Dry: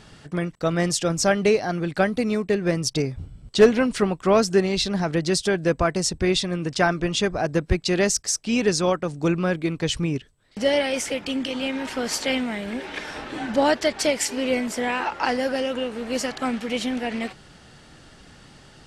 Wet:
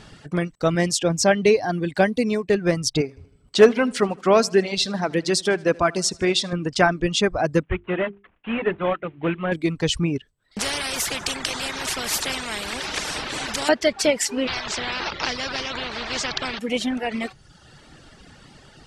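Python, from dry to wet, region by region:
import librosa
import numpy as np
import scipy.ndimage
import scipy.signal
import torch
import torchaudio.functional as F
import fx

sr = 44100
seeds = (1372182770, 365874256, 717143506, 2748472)

y = fx.chain(x, sr, fx.highpass(hz=60.0, slope=12),
    fx.notch(hz=1300.0, q=5.3), at=(0.75, 2.5))
y = fx.chain(y, sr, fx.highpass(hz=240.0, slope=6),
    fx.echo_feedback(ms=78, feedback_pct=54, wet_db=-13.0), at=(3.01, 6.53))
y = fx.chain(y, sr, fx.cvsd(bps=16000),
    fx.low_shelf(hz=440.0, db=-6.0),
    fx.hum_notches(base_hz=50, count=8), at=(7.63, 9.52))
y = fx.chain(y, sr, fx.echo_feedback(ms=96, feedback_pct=45, wet_db=-21.5),
    fx.spectral_comp(ratio=4.0), at=(10.59, 13.69))
y = fx.chain(y, sr, fx.lowpass(hz=4700.0, slope=24),
    fx.spectral_comp(ratio=4.0), at=(14.47, 16.59))
y = fx.dereverb_blind(y, sr, rt60_s=0.9)
y = fx.high_shelf(y, sr, hz=9600.0, db=-4.5)
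y = F.gain(torch.from_numpy(y), 3.0).numpy()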